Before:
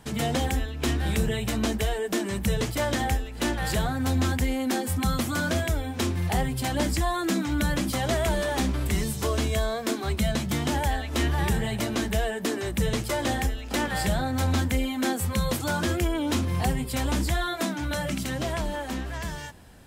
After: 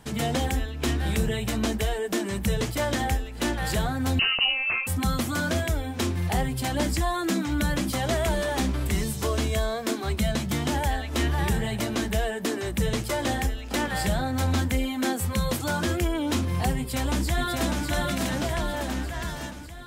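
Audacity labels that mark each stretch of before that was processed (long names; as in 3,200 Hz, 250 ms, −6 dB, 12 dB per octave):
4.190000	4.870000	voice inversion scrambler carrier 2,900 Hz
16.770000	17.860000	delay throw 600 ms, feedback 60%, level −3 dB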